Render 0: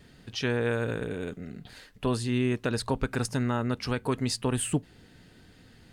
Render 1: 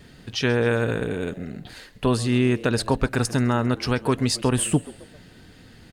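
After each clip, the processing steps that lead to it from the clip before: frequency-shifting echo 133 ms, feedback 46%, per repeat +97 Hz, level -20 dB; trim +6.5 dB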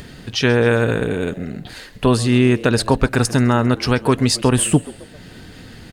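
upward compressor, threshold -38 dBFS; trim +6 dB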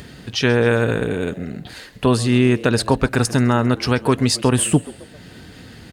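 high-pass 47 Hz; trim -1 dB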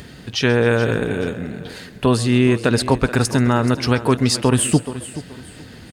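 feedback delay 428 ms, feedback 28%, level -14.5 dB

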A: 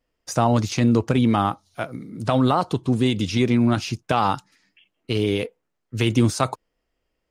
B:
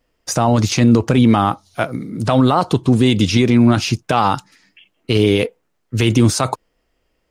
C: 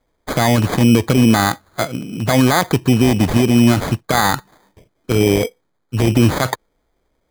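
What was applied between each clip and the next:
peak limiter -12.5 dBFS, peak gain reduction 7.5 dB; trim +9 dB
sample-and-hold 16×

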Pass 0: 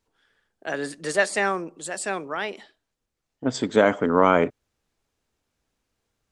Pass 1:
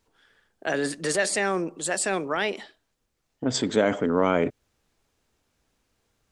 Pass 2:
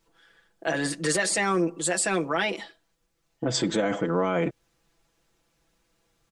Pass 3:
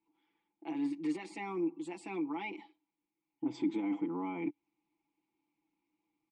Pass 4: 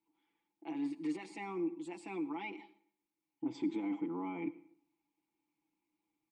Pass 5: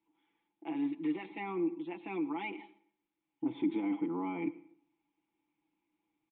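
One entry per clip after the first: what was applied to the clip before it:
dynamic bell 1.1 kHz, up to -6 dB, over -33 dBFS, Q 1.1; in parallel at -1 dB: compressor with a negative ratio -30 dBFS, ratio -1; on the sum: trim -3 dB
comb 6 ms, depth 81%; peak limiter -15 dBFS, peak gain reduction 9 dB
vowel filter u
plate-style reverb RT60 0.62 s, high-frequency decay 0.8×, pre-delay 75 ms, DRR 17.5 dB; trim -2.5 dB
resampled via 8 kHz; trim +3.5 dB

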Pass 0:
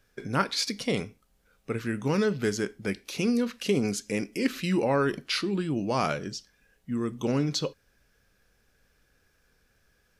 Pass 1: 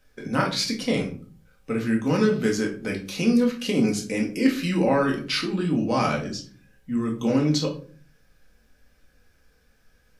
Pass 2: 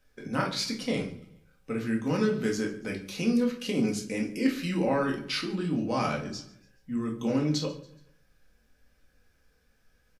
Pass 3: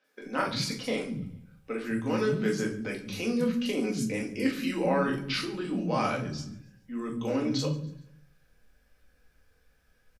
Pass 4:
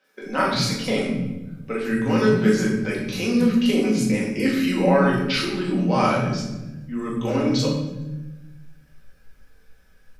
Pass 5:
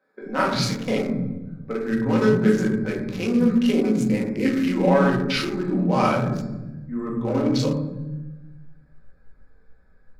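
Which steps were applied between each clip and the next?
reverberation RT60 0.45 s, pre-delay 4 ms, DRR -1 dB
feedback delay 141 ms, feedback 42%, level -20.5 dB; trim -5.5 dB
three bands offset in time mids, highs, lows 40/210 ms, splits 230/5600 Hz; trim +1 dB
simulated room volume 430 m³, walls mixed, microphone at 1.1 m; trim +5.5 dB
local Wiener filter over 15 samples

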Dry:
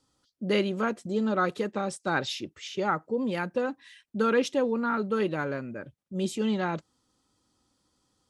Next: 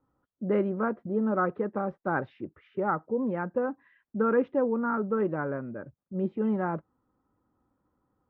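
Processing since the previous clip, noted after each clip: low-pass 1.5 kHz 24 dB/octave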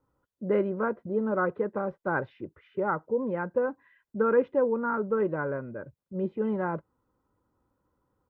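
comb 2 ms, depth 33%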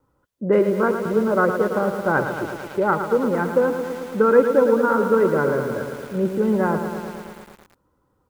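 wow and flutter 19 cents; bit-crushed delay 111 ms, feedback 80%, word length 8-bit, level -8 dB; trim +8 dB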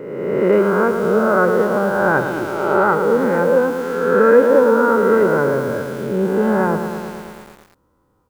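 reverse spectral sustain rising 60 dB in 1.49 s; trim +1 dB

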